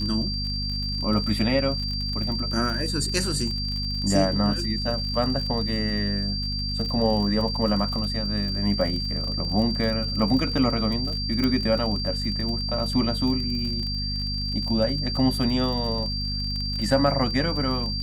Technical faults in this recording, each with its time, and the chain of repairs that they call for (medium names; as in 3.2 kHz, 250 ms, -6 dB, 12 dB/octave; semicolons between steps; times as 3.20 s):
crackle 38 per s -30 dBFS
hum 50 Hz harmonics 5 -30 dBFS
whine 4.7 kHz -29 dBFS
11.44 s: pop -12 dBFS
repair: de-click; de-hum 50 Hz, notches 5; band-stop 4.7 kHz, Q 30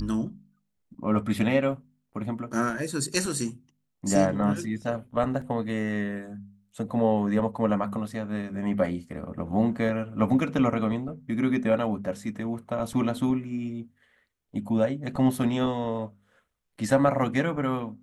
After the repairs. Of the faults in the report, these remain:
nothing left